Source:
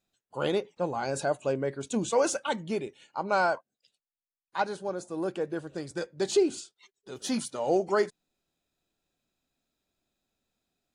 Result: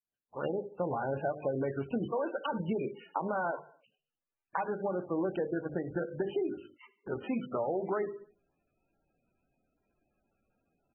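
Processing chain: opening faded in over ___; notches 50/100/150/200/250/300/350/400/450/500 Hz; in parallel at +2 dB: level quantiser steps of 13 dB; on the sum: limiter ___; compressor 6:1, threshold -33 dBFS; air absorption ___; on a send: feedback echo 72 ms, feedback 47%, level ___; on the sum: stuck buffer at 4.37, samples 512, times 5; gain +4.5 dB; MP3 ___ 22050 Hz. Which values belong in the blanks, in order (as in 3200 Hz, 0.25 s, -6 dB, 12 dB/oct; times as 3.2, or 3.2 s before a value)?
1.45 s, -17.5 dBFS, 310 m, -17 dB, 8 kbps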